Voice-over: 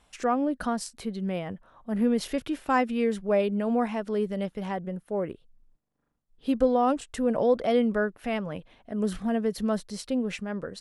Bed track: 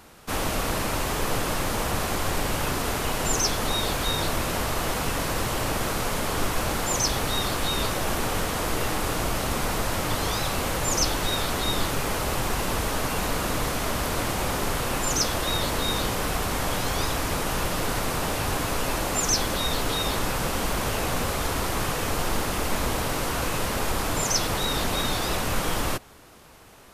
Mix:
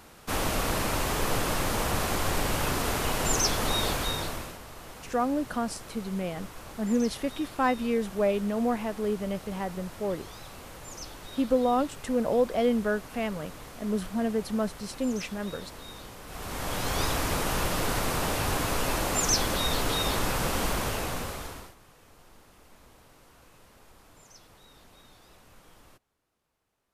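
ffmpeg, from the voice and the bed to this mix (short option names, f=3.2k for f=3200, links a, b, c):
-filter_complex "[0:a]adelay=4900,volume=-1.5dB[a];[1:a]volume=15dB,afade=t=out:st=3.86:d=0.72:silence=0.149624,afade=t=in:st=16.26:d=0.77:silence=0.149624,afade=t=out:st=20.65:d=1.1:silence=0.0398107[b];[a][b]amix=inputs=2:normalize=0"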